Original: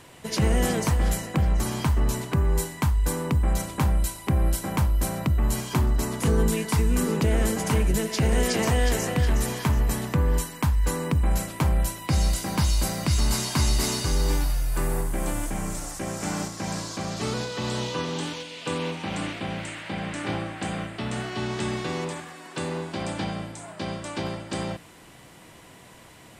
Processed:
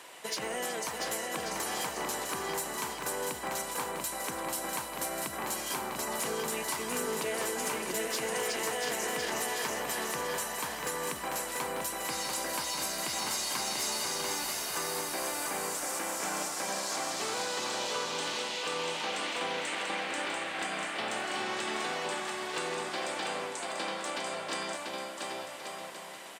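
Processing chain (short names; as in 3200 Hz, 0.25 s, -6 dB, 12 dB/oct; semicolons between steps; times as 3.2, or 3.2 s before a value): HPF 530 Hz 12 dB/oct; compressor 4:1, threshold -34 dBFS, peak gain reduction 9 dB; overloaded stage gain 29 dB; on a send: bouncing-ball echo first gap 0.69 s, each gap 0.65×, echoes 5; on the sum: gain +1.5 dB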